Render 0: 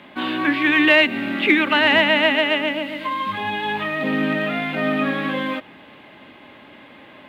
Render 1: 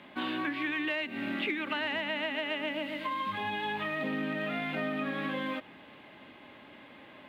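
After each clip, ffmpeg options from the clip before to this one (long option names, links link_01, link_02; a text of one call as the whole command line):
ffmpeg -i in.wav -af "acompressor=threshold=-22dB:ratio=10,volume=-7.5dB" out.wav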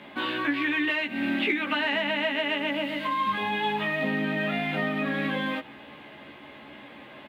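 ffmpeg -i in.wav -filter_complex "[0:a]asplit=2[link_01][link_02];[link_02]adelay=14,volume=-3dB[link_03];[link_01][link_03]amix=inputs=2:normalize=0,volume=4.5dB" out.wav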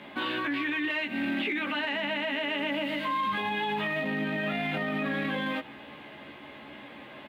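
ffmpeg -i in.wav -af "alimiter=limit=-22.5dB:level=0:latency=1:release=15" out.wav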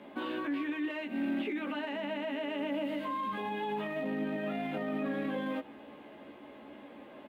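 ffmpeg -i in.wav -af "equalizer=frequency=125:width_type=o:width=1:gain=-7,equalizer=frequency=250:width_type=o:width=1:gain=5,equalizer=frequency=500:width_type=o:width=1:gain=5,equalizer=frequency=2000:width_type=o:width=1:gain=-5,equalizer=frequency=4000:width_type=o:width=1:gain=-6,volume=-6dB" out.wav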